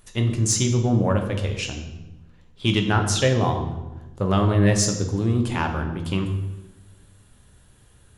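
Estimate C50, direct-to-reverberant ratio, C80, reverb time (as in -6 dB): 7.5 dB, 4.0 dB, 9.5 dB, 1.1 s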